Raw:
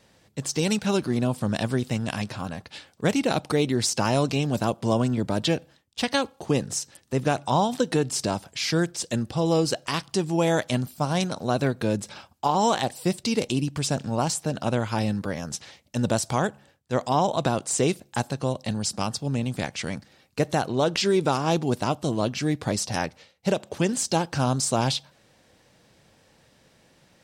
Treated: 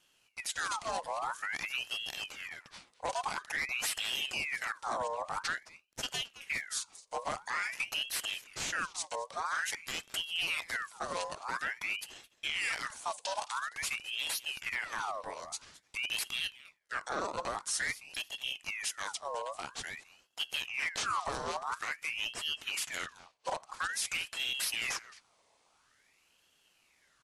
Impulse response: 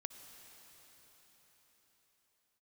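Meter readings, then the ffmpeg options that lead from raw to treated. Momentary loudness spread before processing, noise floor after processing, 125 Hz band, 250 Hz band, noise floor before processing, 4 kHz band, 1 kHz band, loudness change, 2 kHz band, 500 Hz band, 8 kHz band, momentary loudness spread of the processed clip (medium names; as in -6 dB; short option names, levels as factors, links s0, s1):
7 LU, -71 dBFS, -31.5 dB, -29.5 dB, -61 dBFS, -4.0 dB, -9.5 dB, -10.0 dB, -0.5 dB, -18.0 dB, -8.0 dB, 8 LU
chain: -filter_complex "[0:a]highshelf=f=6400:g=10,asplit=2[s0][s1];[s1]aecho=0:1:216:0.106[s2];[s0][s2]amix=inputs=2:normalize=0,afreqshift=-420,asoftclip=type=hard:threshold=0.15,aresample=22050,aresample=44100,aeval=exprs='val(0)*sin(2*PI*1900*n/s+1900*0.6/0.49*sin(2*PI*0.49*n/s))':c=same,volume=0.355"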